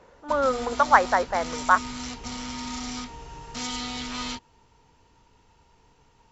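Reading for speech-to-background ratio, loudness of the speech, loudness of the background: 11.0 dB, −23.0 LKFS, −34.0 LKFS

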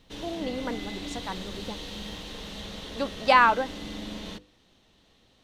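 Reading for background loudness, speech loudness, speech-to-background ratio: −38.0 LKFS, −25.0 LKFS, 13.0 dB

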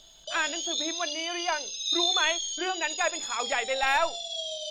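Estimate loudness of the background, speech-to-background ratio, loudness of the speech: −30.0 LKFS, −0.5 dB, −30.5 LKFS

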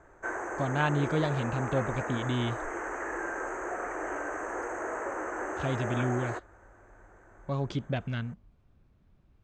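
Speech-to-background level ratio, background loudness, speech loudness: 3.5 dB, −35.5 LKFS, −32.0 LKFS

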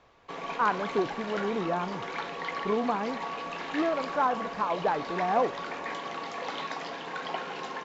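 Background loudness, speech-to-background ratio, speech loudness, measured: −35.5 LKFS, 5.0 dB, −30.5 LKFS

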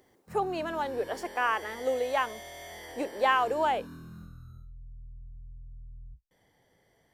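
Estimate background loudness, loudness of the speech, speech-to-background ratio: −46.0 LKFS, −30.0 LKFS, 16.0 dB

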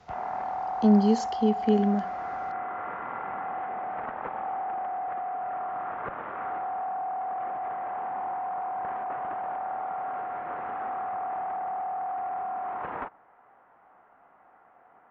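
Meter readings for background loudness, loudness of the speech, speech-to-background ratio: −33.0 LKFS, −24.5 LKFS, 8.5 dB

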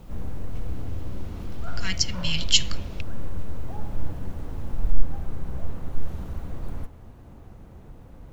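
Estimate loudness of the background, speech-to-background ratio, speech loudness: −36.5 LKFS, 11.5 dB, −25.0 LKFS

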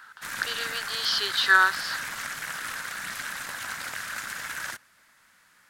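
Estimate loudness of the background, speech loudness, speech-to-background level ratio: −33.5 LKFS, −24.5 LKFS, 9.0 dB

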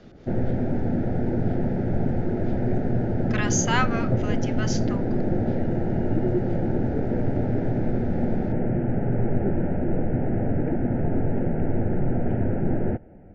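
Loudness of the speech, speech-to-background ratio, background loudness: −29.5 LKFS, −4.0 dB, −25.5 LKFS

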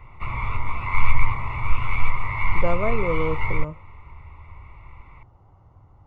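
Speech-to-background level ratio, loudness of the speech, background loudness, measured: −1.5 dB, −29.5 LKFS, −28.0 LKFS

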